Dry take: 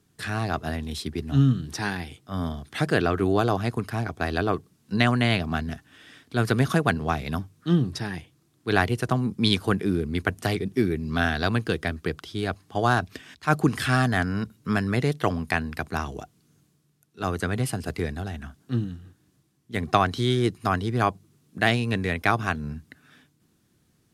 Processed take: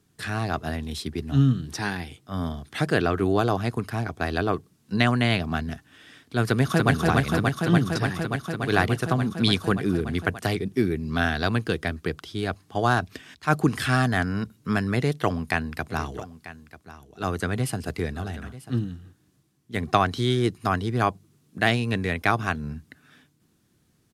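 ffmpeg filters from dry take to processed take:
-filter_complex "[0:a]asplit=2[a][b];[b]afade=t=in:st=6.47:d=0.01,afade=t=out:st=6.91:d=0.01,aecho=0:1:290|580|870|1160|1450|1740|2030|2320|2610|2900|3190|3480:0.794328|0.675179|0.573902|0.487817|0.414644|0.352448|0.299581|0.254643|0.216447|0.18398|0.156383|0.132925[c];[a][c]amix=inputs=2:normalize=0,asplit=3[d][e][f];[d]afade=t=out:st=15.89:d=0.02[g];[e]aecho=1:1:940:0.158,afade=t=in:st=15.89:d=0.02,afade=t=out:st=18.79:d=0.02[h];[f]afade=t=in:st=18.79:d=0.02[i];[g][h][i]amix=inputs=3:normalize=0"

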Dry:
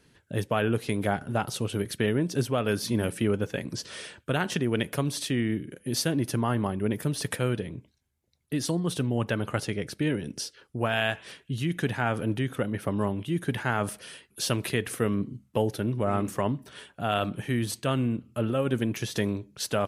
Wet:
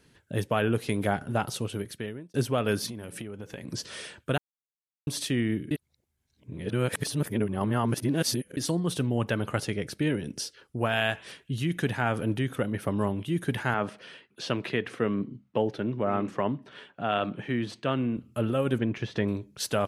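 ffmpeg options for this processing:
-filter_complex "[0:a]asettb=1/sr,asplit=3[a][b][c];[a]atrim=end=2.864[d];[b]atrim=start=2.86:end=3.68,asetpts=PTS-STARTPTS,afade=t=in:d=0.004:c=qsin,afade=t=out:st=0.816:d=0.004:c=qsin,acompressor=threshold=-34dB:ratio=10:attack=3.2:release=140:knee=1:detection=peak[e];[c]atrim=start=3.676[f];[d][e]acrossfade=d=0.004:c1=hsin:c2=qsin[g];[g][f]acrossfade=d=0.004:c1=qsin:c2=hsin,asettb=1/sr,asplit=3[h][i][j];[h]atrim=end=13.744[k];[i]atrim=start=13.74:end=18.17,asetpts=PTS-STARTPTS,afade=t=in:d=0.004:c=qsin,afade=t=out:st=4.426:d=0.004:c=qsin,highpass=150,lowpass=3.4k[l];[j]atrim=start=18.166[m];[k][l]acrossfade=d=0.004:c1=hsin:c2=qsin[n];[n][m]acrossfade=d=0.004:c1=qsin:c2=hsin,asettb=1/sr,asplit=3[o][p][q];[o]atrim=end=18.784[r];[p]atrim=start=18.78:end=19.28,asetpts=PTS-STARTPTS,afade=t=in:d=0.004:c=qsin,afade=t=out:st=0.496:d=0.004:c=qsin,lowpass=2.7k[s];[q]atrim=start=19.276[t];[r][s]acrossfade=d=0.004:c1=hsin:c2=qsin[u];[u][t]acrossfade=d=0.004:c1=qsin:c2=hsin,asplit=6[v][w][x][y][z][aa];[v]atrim=end=2.34,asetpts=PTS-STARTPTS,afade=t=out:st=1.45:d=0.89[ab];[w]atrim=start=2.34:end=4.38,asetpts=PTS-STARTPTS,afade=t=in:d=0.004:c=hsin,afade=t=out:st=2.036:d=0.004:c=hsin[ac];[x]atrim=start=4.38:end=5.07,asetpts=PTS-STARTPTS,volume=0[ad];[y]atrim=start=5.07:end=5.712,asetpts=PTS-STARTPTS,afade=t=in:d=0.004:c=hsin[ae];[z]atrim=start=5.708:end=8.572,asetpts=PTS-STARTPTS,areverse[af];[aa]atrim=start=8.568[ag];[ab][ac][ad][ae]concat=n=4:v=0:a=1[ah];[ah][af]acrossfade=d=0.004:c1=hsin:c2=hsin[ai];[ai][ag]acrossfade=d=0.004:c1=hsin:c2=hsin"

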